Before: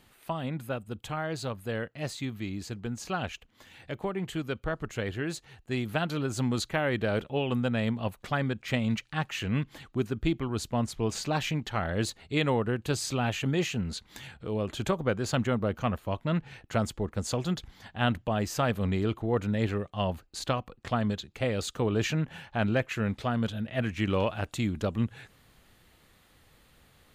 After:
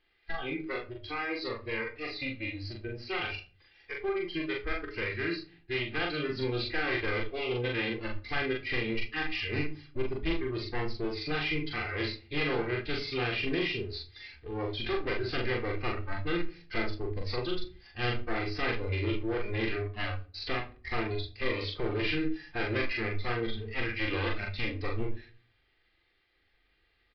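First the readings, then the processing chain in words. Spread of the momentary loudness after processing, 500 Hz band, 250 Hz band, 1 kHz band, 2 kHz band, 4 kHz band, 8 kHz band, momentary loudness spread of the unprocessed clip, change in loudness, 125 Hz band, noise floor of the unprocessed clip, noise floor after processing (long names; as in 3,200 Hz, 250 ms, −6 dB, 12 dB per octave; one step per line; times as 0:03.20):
7 LU, −2.5 dB, −5.0 dB, −4.5 dB, +3.0 dB, +1.0 dB, below −25 dB, 7 LU, −2.5 dB, −6.5 dB, −62 dBFS, −71 dBFS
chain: lower of the sound and its delayed copy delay 2.5 ms
noise reduction from a noise print of the clip's start 16 dB
octave-band graphic EQ 125/1,000/2,000 Hz −8/−6/+9 dB
in parallel at +2 dB: downward compressor, threshold −41 dBFS, peak gain reduction 19.5 dB
on the sum: gain into a clipping stage and back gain 24.5 dB
double-tracking delay 41 ms −2 dB
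rectangular room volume 230 cubic metres, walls furnished, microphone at 0.83 metres
downsampling to 11,025 Hz
level −4.5 dB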